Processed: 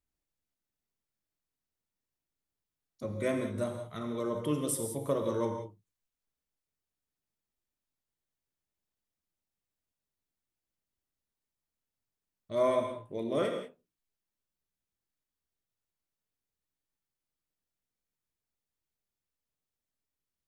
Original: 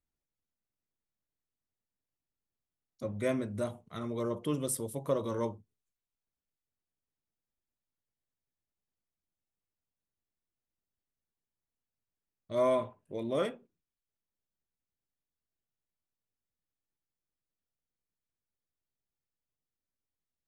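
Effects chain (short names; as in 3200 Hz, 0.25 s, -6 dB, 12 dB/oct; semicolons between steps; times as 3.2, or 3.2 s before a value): non-linear reverb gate 0.21 s flat, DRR 4.5 dB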